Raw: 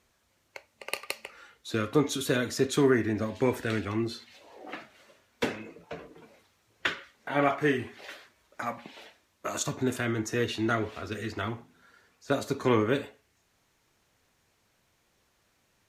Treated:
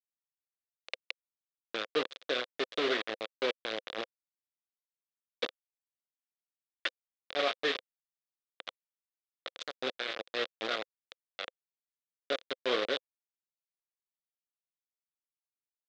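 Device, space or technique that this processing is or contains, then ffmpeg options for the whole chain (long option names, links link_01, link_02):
hand-held game console: -af "acrusher=bits=3:mix=0:aa=0.000001,highpass=470,equalizer=frequency=520:width_type=q:width=4:gain=7,equalizer=frequency=910:width_type=q:width=4:gain=-10,equalizer=frequency=3600:width_type=q:width=4:gain=7,lowpass=frequency=4400:width=0.5412,lowpass=frequency=4400:width=1.3066,volume=-5.5dB"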